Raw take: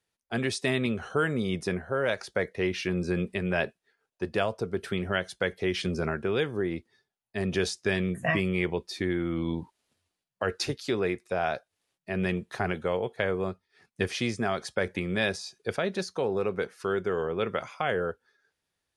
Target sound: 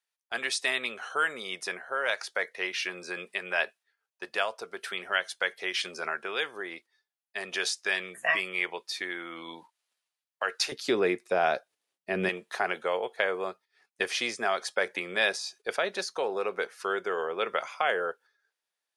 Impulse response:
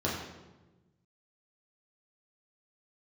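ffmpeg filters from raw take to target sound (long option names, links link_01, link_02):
-af "asetnsamples=nb_out_samples=441:pad=0,asendcmd='10.72 highpass f 280;12.29 highpass f 590',highpass=890,agate=range=-8dB:threshold=-55dB:ratio=16:detection=peak,volume=3.5dB"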